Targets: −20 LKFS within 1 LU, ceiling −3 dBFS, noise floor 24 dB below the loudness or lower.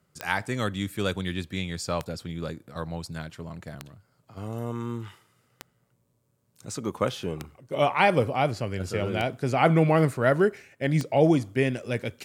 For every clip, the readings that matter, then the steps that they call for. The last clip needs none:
number of clicks 7; integrated loudness −26.5 LKFS; sample peak −5.5 dBFS; target loudness −20.0 LKFS
→ click removal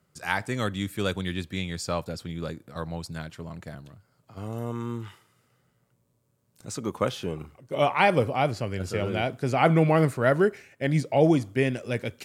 number of clicks 0; integrated loudness −26.5 LKFS; sample peak −5.5 dBFS; target loudness −20.0 LKFS
→ level +6.5 dB
brickwall limiter −3 dBFS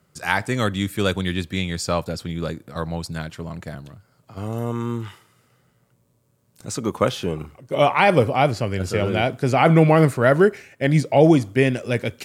integrated loudness −20.5 LKFS; sample peak −3.0 dBFS; background noise floor −64 dBFS

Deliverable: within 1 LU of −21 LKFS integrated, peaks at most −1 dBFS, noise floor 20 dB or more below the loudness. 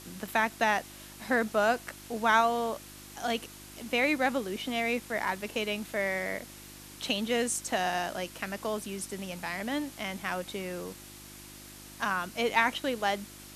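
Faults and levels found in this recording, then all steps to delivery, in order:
mains hum 50 Hz; hum harmonics up to 350 Hz; level of the hum −53 dBFS; background noise floor −48 dBFS; target noise floor −51 dBFS; integrated loudness −30.5 LKFS; sample peak −9.5 dBFS; target loudness −21.0 LKFS
→ hum removal 50 Hz, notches 7
noise reduction from a noise print 6 dB
level +9.5 dB
brickwall limiter −1 dBFS

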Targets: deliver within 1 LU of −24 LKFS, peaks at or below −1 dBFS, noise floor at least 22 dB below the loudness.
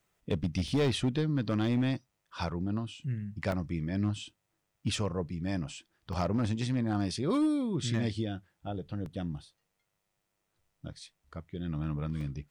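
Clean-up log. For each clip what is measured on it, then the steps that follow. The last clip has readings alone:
share of clipped samples 0.9%; peaks flattened at −22.5 dBFS; number of dropouts 5; longest dropout 1.7 ms; integrated loudness −33.0 LKFS; sample peak −22.5 dBFS; target loudness −24.0 LKFS
→ clipped peaks rebuilt −22.5 dBFS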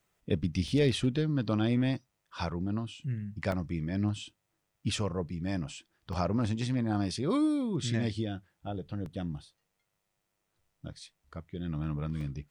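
share of clipped samples 0.0%; number of dropouts 5; longest dropout 1.7 ms
→ repair the gap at 0:00.68/0:03.52/0:06.13/0:09.06/0:12.21, 1.7 ms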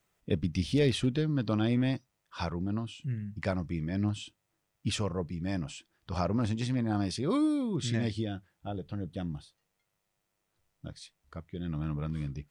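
number of dropouts 0; integrated loudness −32.5 LKFS; sample peak −15.0 dBFS; target loudness −24.0 LKFS
→ level +8.5 dB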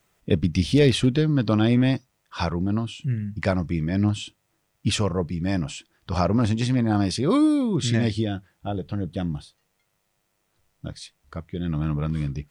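integrated loudness −24.0 LKFS; sample peak −6.5 dBFS; background noise floor −73 dBFS

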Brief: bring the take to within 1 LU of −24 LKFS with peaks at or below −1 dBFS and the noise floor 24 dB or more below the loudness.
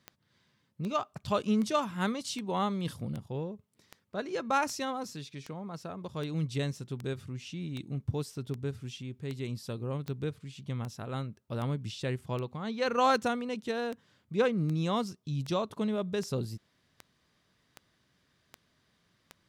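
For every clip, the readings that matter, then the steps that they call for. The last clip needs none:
number of clicks 26; integrated loudness −34.0 LKFS; sample peak −13.0 dBFS; target loudness −24.0 LKFS
→ click removal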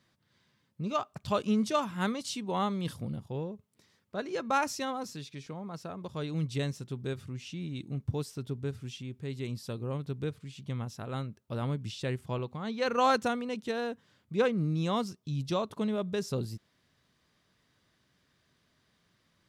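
number of clicks 0; integrated loudness −34.0 LKFS; sample peak −13.0 dBFS; target loudness −24.0 LKFS
→ level +10 dB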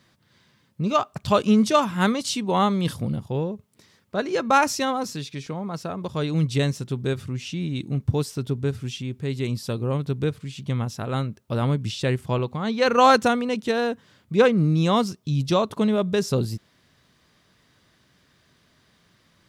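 integrated loudness −24.0 LKFS; sample peak −3.0 dBFS; background noise floor −63 dBFS

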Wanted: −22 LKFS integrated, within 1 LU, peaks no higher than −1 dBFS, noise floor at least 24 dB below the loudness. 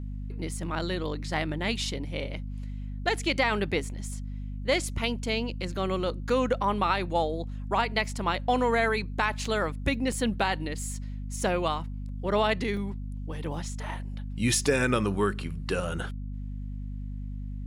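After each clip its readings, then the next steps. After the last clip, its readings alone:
number of dropouts 4; longest dropout 1.6 ms; mains hum 50 Hz; hum harmonics up to 250 Hz; level of the hum −33 dBFS; integrated loudness −29.5 LKFS; sample peak −11.0 dBFS; target loudness −22.0 LKFS
→ repair the gap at 0:09.45/0:10.12/0:12.77/0:13.44, 1.6 ms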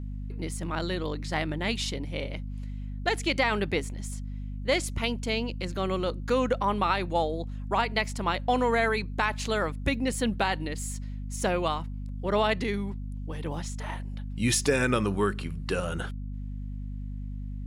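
number of dropouts 0; mains hum 50 Hz; hum harmonics up to 250 Hz; level of the hum −33 dBFS
→ mains-hum notches 50/100/150/200/250 Hz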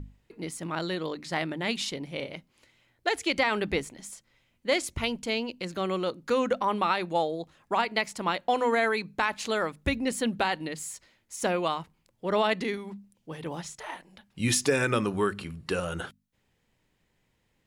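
mains hum none found; integrated loudness −29.0 LKFS; sample peak −10.5 dBFS; target loudness −22.0 LKFS
→ level +7 dB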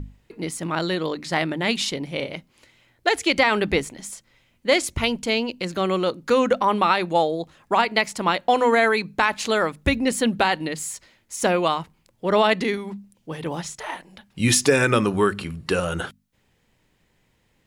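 integrated loudness −22.0 LKFS; sample peak −3.5 dBFS; background noise floor −66 dBFS

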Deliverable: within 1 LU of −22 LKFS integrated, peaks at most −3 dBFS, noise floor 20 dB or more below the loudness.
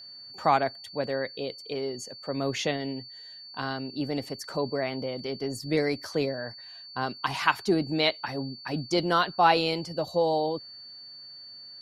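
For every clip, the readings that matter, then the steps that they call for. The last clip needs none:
interfering tone 4,500 Hz; level of the tone −43 dBFS; integrated loudness −28.5 LKFS; sample peak −7.0 dBFS; target loudness −22.0 LKFS
→ notch filter 4,500 Hz, Q 30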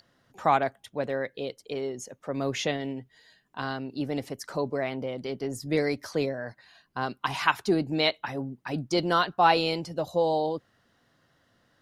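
interfering tone none found; integrated loudness −29.0 LKFS; sample peak −6.5 dBFS; target loudness −22.0 LKFS
→ level +7 dB
brickwall limiter −3 dBFS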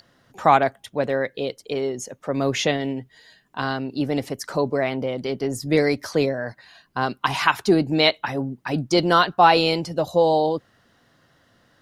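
integrated loudness −22.0 LKFS; sample peak −3.0 dBFS; background noise floor −61 dBFS

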